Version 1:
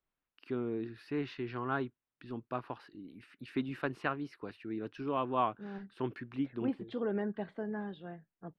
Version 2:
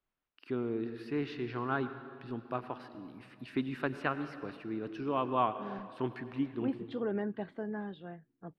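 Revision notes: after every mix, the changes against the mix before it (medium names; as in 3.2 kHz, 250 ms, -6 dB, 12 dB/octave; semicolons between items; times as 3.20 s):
reverb: on, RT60 2.3 s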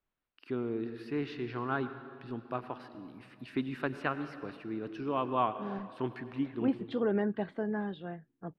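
second voice +4.5 dB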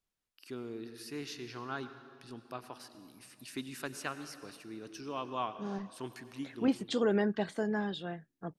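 first voice -8.5 dB; master: remove distance through air 470 m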